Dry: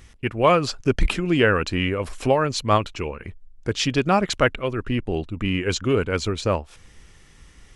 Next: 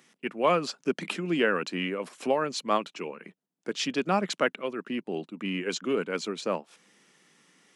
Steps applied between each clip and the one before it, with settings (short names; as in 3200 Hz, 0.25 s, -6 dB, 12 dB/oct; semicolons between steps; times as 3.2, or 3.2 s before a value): steep high-pass 170 Hz 48 dB/oct; gain -6.5 dB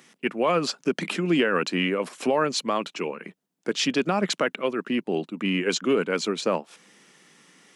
limiter -19 dBFS, peak gain reduction 8.5 dB; gain +6.5 dB